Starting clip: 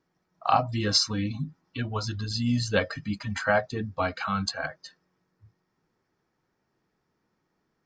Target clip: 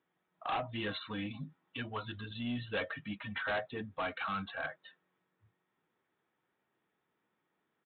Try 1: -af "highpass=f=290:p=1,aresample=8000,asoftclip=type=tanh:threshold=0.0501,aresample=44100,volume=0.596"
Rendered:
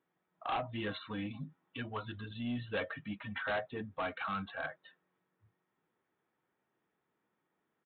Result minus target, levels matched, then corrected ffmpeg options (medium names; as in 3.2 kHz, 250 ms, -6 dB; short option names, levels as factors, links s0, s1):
4 kHz band -2.5 dB
-af "highpass=f=290:p=1,highshelf=f=2800:g=7.5,aresample=8000,asoftclip=type=tanh:threshold=0.0501,aresample=44100,volume=0.596"